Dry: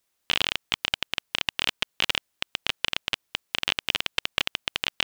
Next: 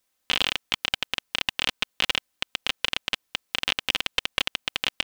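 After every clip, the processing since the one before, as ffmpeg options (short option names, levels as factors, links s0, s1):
-af "aecho=1:1:3.9:0.39"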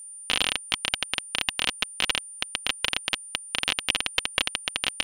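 -af "aeval=exprs='val(0)+0.0112*sin(2*PI*9200*n/s)':c=same"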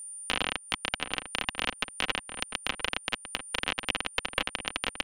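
-filter_complex "[0:a]acrossover=split=220|2300[s0][s1][s2];[s2]acompressor=threshold=0.0178:ratio=6[s3];[s0][s1][s3]amix=inputs=3:normalize=0,asplit=2[s4][s5];[s5]adelay=699.7,volume=0.398,highshelf=f=4000:g=-15.7[s6];[s4][s6]amix=inputs=2:normalize=0"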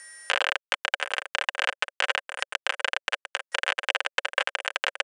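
-af "aeval=exprs='val(0)*gte(abs(val(0)),0.01)':c=same,highpass=f=490:w=0.5412,highpass=f=490:w=1.3066,equalizer=f=560:t=q:w=4:g=7,equalizer=f=1600:t=q:w=4:g=9,equalizer=f=3700:t=q:w=4:g=-4,equalizer=f=7600:t=q:w=4:g=9,lowpass=f=8100:w=0.5412,lowpass=f=8100:w=1.3066,volume=1.41"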